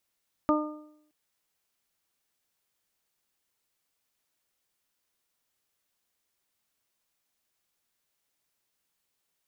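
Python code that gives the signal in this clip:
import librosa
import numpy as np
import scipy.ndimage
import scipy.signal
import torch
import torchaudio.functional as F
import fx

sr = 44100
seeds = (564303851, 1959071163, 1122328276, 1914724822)

y = fx.additive(sr, length_s=0.62, hz=303.0, level_db=-21.0, upper_db=(-3.5, -8.0, -3), decay_s=0.75, upper_decays_s=(0.66, 0.55, 0.57))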